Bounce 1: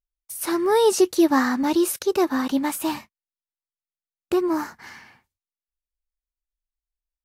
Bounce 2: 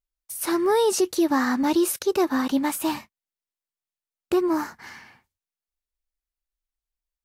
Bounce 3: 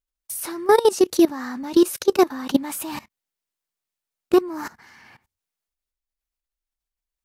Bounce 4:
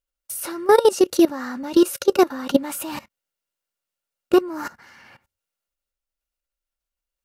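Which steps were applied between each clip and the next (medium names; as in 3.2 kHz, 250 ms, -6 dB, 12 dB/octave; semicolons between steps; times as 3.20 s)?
peak limiter -13.5 dBFS, peak gain reduction 5 dB
level held to a coarse grid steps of 19 dB; trim +7.5 dB
small resonant body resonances 550/1400/2800 Hz, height 10 dB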